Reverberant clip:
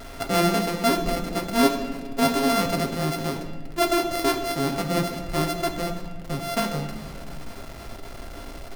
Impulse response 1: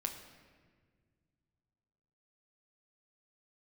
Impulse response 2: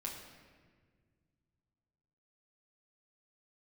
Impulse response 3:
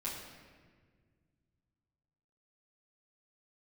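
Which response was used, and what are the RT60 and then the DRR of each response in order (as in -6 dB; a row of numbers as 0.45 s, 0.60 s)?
1; 1.7 s, 1.7 s, 1.7 s; 3.0 dB, -3.0 dB, -9.0 dB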